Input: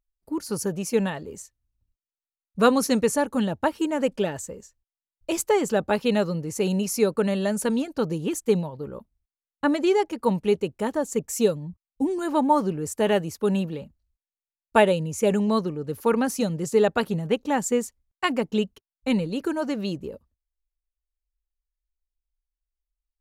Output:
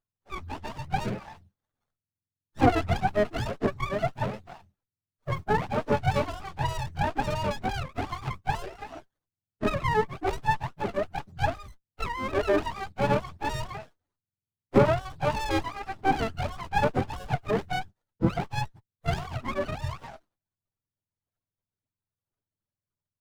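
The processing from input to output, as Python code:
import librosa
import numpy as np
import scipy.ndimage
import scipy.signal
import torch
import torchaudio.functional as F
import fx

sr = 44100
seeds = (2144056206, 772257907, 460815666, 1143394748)

y = fx.octave_mirror(x, sr, pivot_hz=600.0)
y = fx.running_max(y, sr, window=17)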